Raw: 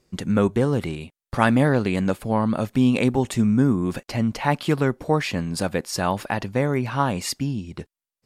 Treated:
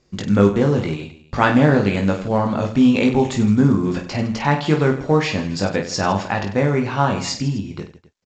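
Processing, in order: reverse bouncing-ball echo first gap 20 ms, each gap 1.5×, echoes 5; trim +2 dB; µ-law 128 kbps 16 kHz

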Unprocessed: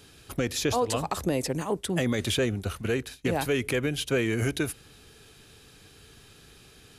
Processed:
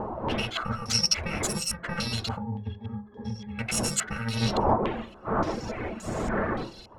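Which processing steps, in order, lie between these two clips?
bit-reversed sample order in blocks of 128 samples; wind noise 570 Hz -37 dBFS; reverb removal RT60 0.9 s; in parallel at -1.5 dB: compression, threshold -39 dBFS, peak gain reduction 16 dB; 2.38–3.59 s: on the sum: pitch-class resonator G#, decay 0.11 s; saturation -24.5 dBFS, distortion -11 dB; on a send at -7.5 dB: reverberation, pre-delay 5 ms; on the sum: step-sequenced low-pass 3.5 Hz 940–7400 Hz; trim +3.5 dB

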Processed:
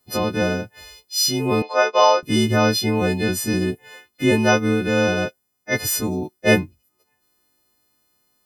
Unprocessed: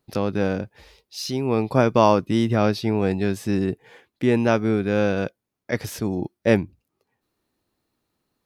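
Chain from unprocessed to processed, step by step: partials quantised in pitch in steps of 3 st; 1.62–2.23 s: Chebyshev band-pass 490–5400 Hz, order 3; trim +2 dB

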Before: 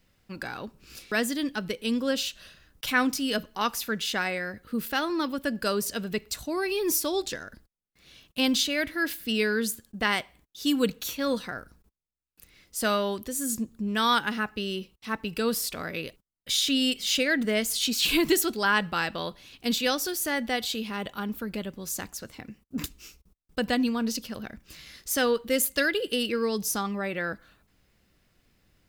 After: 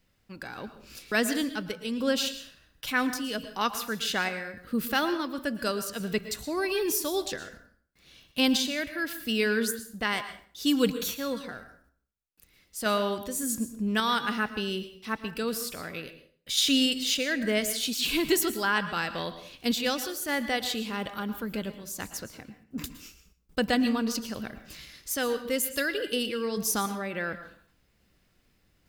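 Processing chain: random-step tremolo; plate-style reverb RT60 0.5 s, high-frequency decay 0.8×, pre-delay 100 ms, DRR 11 dB; trim +1.5 dB

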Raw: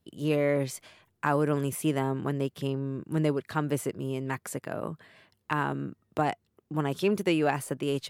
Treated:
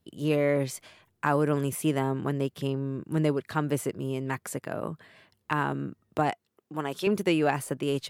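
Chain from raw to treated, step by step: 6.30–7.07 s: high-pass 420 Hz 6 dB/octave; trim +1 dB

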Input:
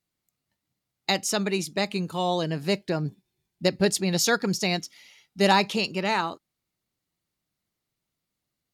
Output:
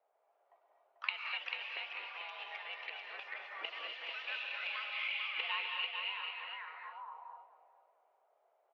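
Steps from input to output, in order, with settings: single-diode clipper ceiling -19 dBFS; peaking EQ 900 Hz +8.5 dB 1.9 oct; in parallel at -0.5 dB: level held to a coarse grid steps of 16 dB; on the sum: mistuned SSB +110 Hz 320–3400 Hz; inverted gate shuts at -28 dBFS, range -26 dB; ever faster or slower copies 126 ms, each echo +3 st, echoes 2, each echo -6 dB; feedback delay 442 ms, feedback 30%, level -5.5 dB; auto-wah 640–2700 Hz, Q 4.8, up, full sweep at -44 dBFS; gated-style reverb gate 290 ms rising, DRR 2 dB; trim +15 dB

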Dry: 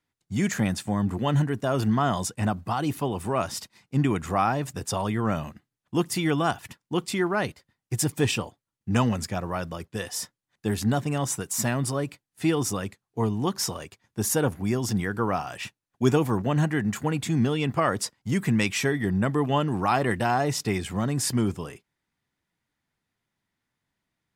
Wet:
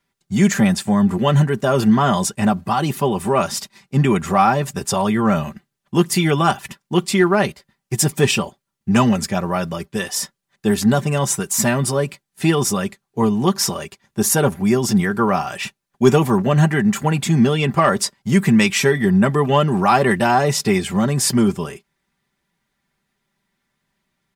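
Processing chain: comb 5.1 ms, depth 62%; in parallel at -5 dB: overload inside the chain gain 14 dB; on the sum: trim +3.5 dB

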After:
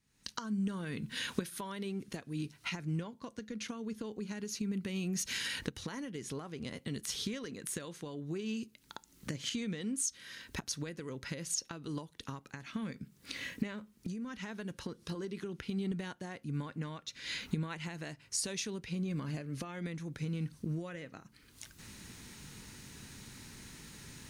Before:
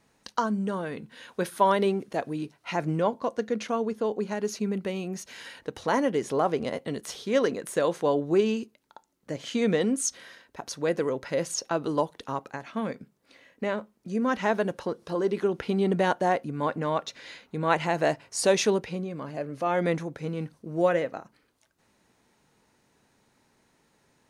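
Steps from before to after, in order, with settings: recorder AGC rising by 54 dB/s; amplifier tone stack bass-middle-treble 6-0-2; 13.66–14.49 s: compression, threshold -41 dBFS, peak gain reduction 6 dB; trim +4 dB

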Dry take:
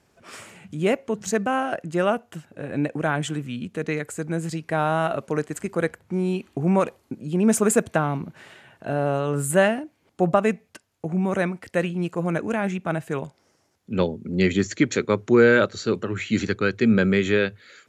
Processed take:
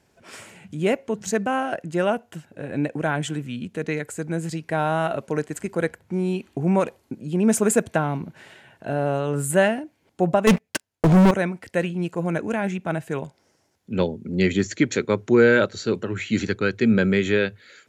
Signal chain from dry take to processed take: band-stop 1.2 kHz, Q 8.7; 10.47–11.31 s: waveshaping leveller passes 5

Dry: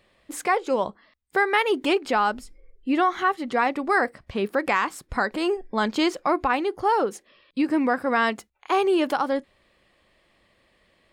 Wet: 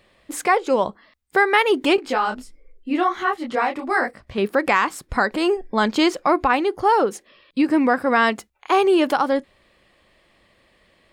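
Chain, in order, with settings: 1.96–4.38 s: detune thickener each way 47 cents; trim +4.5 dB

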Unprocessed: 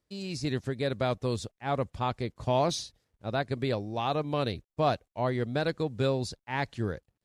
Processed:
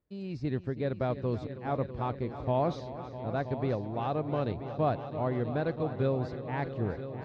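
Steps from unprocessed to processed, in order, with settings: tape spacing loss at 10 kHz 38 dB; multi-head delay 326 ms, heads all three, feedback 57%, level -15 dB

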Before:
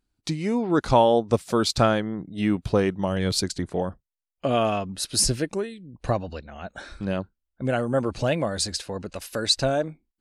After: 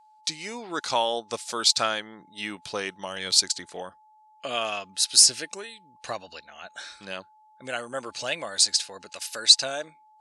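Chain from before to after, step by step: frequency weighting ITU-R 468; whistle 860 Hz -50 dBFS; trim -4.5 dB

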